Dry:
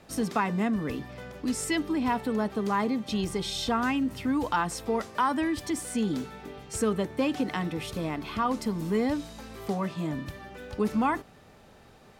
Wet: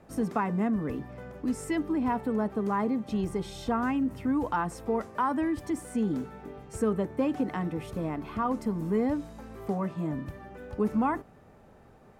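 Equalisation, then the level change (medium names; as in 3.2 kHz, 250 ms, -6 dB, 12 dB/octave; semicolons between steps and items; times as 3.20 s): peaking EQ 3.9 kHz -12.5 dB 1.8 oct; treble shelf 7.3 kHz -8.5 dB; 0.0 dB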